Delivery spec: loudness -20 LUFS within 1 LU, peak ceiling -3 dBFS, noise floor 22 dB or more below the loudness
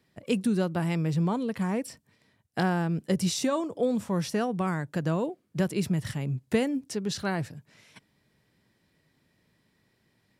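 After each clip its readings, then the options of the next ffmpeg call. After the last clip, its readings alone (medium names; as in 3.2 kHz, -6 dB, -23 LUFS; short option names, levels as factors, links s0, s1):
loudness -29.0 LUFS; peak level -13.0 dBFS; loudness target -20.0 LUFS
-> -af "volume=2.82"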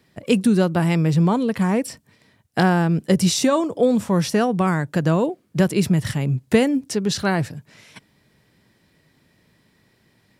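loudness -20.0 LUFS; peak level -4.0 dBFS; noise floor -62 dBFS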